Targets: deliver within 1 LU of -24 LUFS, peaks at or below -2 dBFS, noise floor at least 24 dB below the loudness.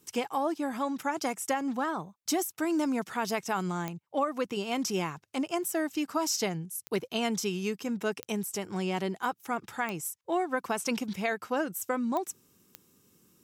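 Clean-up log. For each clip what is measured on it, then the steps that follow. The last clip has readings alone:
clicks 6; loudness -32.0 LUFS; peak -17.0 dBFS; loudness target -24.0 LUFS
-> de-click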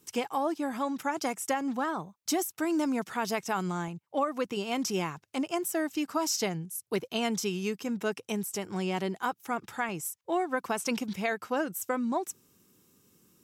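clicks 0; loudness -32.0 LUFS; peak -17.0 dBFS; loudness target -24.0 LUFS
-> gain +8 dB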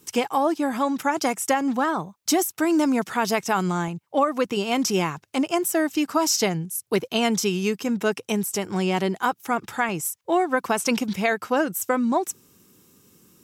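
loudness -24.0 LUFS; peak -9.0 dBFS; noise floor -68 dBFS

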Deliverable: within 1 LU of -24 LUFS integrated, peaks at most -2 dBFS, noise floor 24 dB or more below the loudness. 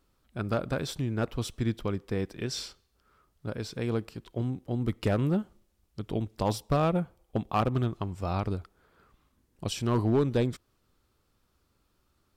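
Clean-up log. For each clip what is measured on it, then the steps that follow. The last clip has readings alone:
clipped 0.4%; flat tops at -18.0 dBFS; loudness -31.0 LUFS; peak -18.0 dBFS; loudness target -24.0 LUFS
-> clip repair -18 dBFS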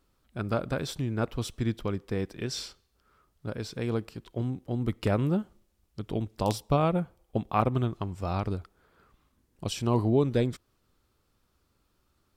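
clipped 0.0%; loudness -30.5 LUFS; peak -9.0 dBFS; loudness target -24.0 LUFS
-> gain +6.5 dB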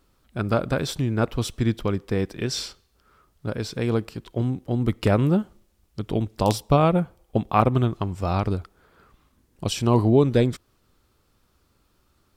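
loudness -24.0 LUFS; peak -2.5 dBFS; noise floor -66 dBFS

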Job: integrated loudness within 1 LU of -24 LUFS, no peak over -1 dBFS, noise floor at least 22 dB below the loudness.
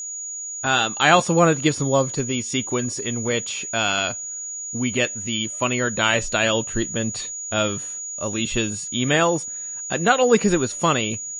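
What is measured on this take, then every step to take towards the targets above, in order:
steady tone 6800 Hz; tone level -29 dBFS; loudness -21.5 LUFS; peak -2.0 dBFS; loudness target -24.0 LUFS
-> notch 6800 Hz, Q 30; gain -2.5 dB

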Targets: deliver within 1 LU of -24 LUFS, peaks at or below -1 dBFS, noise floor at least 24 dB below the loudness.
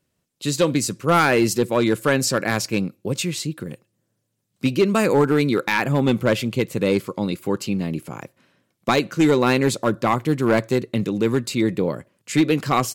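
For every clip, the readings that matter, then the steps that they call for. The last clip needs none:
clipped 1.4%; flat tops at -10.0 dBFS; loudness -21.0 LUFS; peak -10.0 dBFS; loudness target -24.0 LUFS
-> clip repair -10 dBFS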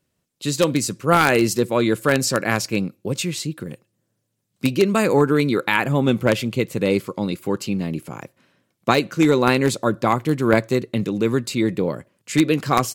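clipped 0.0%; loudness -20.5 LUFS; peak -1.0 dBFS; loudness target -24.0 LUFS
-> gain -3.5 dB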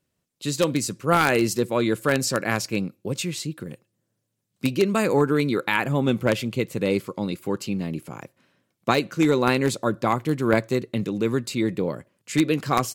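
loudness -24.0 LUFS; peak -4.5 dBFS; noise floor -78 dBFS

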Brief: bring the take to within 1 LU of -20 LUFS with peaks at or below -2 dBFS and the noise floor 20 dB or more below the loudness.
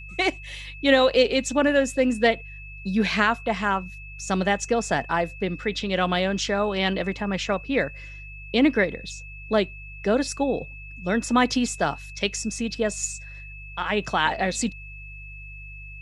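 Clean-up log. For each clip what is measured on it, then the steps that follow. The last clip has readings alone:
hum 50 Hz; harmonics up to 150 Hz; hum level -39 dBFS; steady tone 2600 Hz; tone level -41 dBFS; loudness -24.0 LUFS; peak -5.0 dBFS; loudness target -20.0 LUFS
-> de-hum 50 Hz, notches 3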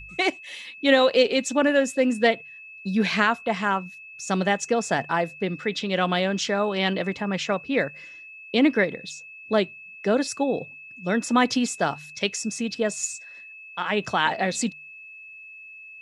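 hum none; steady tone 2600 Hz; tone level -41 dBFS
-> notch 2600 Hz, Q 30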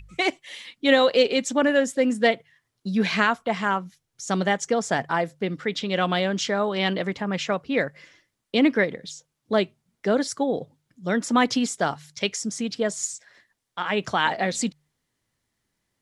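steady tone none; loudness -24.0 LUFS; peak -5.0 dBFS; loudness target -20.0 LUFS
-> gain +4 dB; limiter -2 dBFS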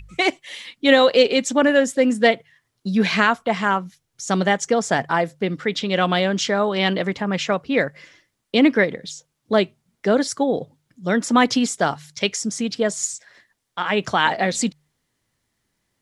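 loudness -20.0 LUFS; peak -2.0 dBFS; noise floor -75 dBFS

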